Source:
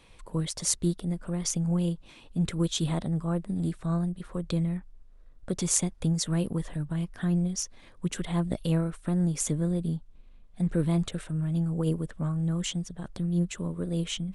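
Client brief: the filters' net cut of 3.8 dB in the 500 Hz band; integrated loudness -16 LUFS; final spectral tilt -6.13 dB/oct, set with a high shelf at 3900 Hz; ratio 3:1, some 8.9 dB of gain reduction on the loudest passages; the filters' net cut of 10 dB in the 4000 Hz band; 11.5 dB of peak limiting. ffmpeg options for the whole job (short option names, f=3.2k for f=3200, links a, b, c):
-af "equalizer=f=500:t=o:g=-5,highshelf=f=3.9k:g=-8,equalizer=f=4k:t=o:g=-8.5,acompressor=threshold=-35dB:ratio=3,volume=24dB,alimiter=limit=-7dB:level=0:latency=1"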